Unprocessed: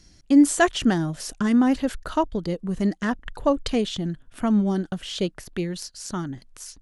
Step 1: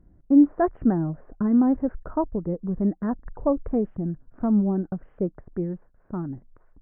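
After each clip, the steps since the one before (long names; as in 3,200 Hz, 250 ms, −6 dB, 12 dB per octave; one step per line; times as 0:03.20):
Gaussian smoothing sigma 7.9 samples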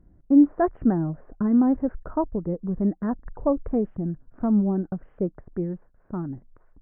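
no processing that can be heard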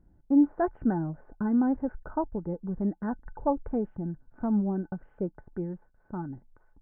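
hollow resonant body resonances 860/1,500 Hz, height 14 dB, ringing for 80 ms
level −5.5 dB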